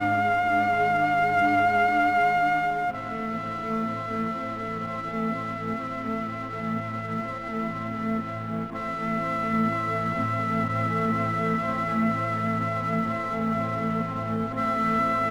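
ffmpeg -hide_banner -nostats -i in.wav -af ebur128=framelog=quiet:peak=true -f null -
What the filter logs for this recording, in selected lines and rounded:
Integrated loudness:
  I:         -26.0 LUFS
  Threshold: -36.0 LUFS
Loudness range:
  LRA:         7.1 LU
  Threshold: -46.7 LUFS
  LRA low:   -30.3 LUFS
  LRA high:  -23.2 LUFS
True peak:
  Peak:      -10.9 dBFS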